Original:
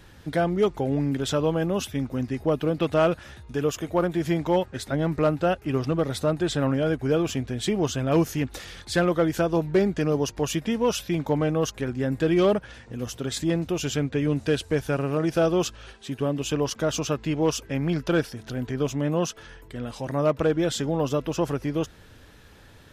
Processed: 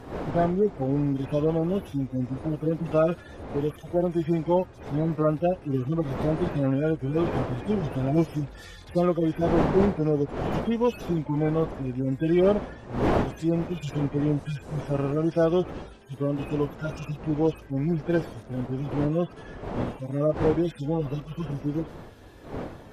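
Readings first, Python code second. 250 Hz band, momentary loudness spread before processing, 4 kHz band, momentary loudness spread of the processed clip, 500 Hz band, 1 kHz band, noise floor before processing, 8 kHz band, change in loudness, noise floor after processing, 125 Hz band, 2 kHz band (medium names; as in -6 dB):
-0.5 dB, 8 LU, -11.5 dB, 10 LU, -1.5 dB, -1.5 dB, -50 dBFS, under -15 dB, -1.0 dB, -46 dBFS, 0.0 dB, -6.5 dB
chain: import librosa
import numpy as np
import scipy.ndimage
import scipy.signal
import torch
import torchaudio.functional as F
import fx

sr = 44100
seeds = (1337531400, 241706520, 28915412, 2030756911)

y = fx.hpss_only(x, sr, part='harmonic')
y = fx.dmg_wind(y, sr, seeds[0], corner_hz=540.0, level_db=-35.0)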